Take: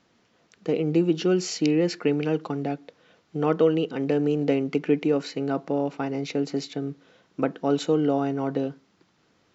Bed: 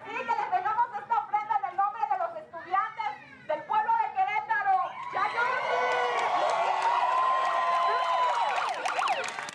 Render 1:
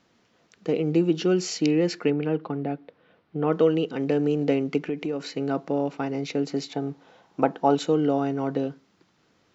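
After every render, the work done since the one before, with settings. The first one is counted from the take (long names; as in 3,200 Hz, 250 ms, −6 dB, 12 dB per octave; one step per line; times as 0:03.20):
0:02.10–0:03.53: high-frequency loss of the air 310 metres
0:04.84–0:05.37: downward compressor 2.5 to 1, threshold −27 dBFS
0:06.68–0:07.75: parametric band 830 Hz +12.5 dB 0.62 octaves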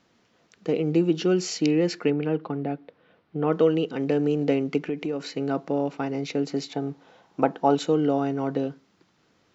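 no processing that can be heard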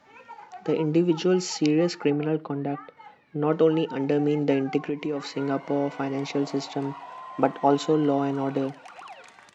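mix in bed −15.5 dB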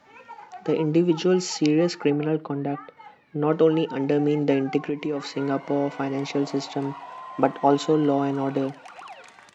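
level +1.5 dB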